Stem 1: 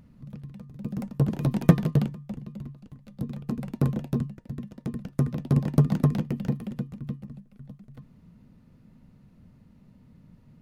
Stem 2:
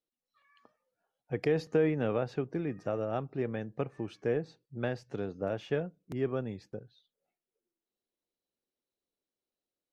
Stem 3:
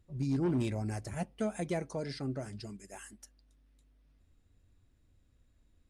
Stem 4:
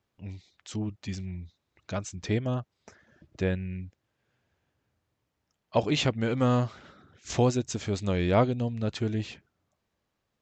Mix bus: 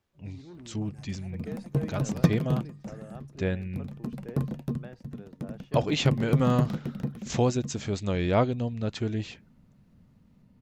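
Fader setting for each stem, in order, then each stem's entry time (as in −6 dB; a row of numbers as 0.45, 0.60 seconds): −4.5, −13.0, −16.5, −0.5 decibels; 0.55, 0.00, 0.05, 0.00 seconds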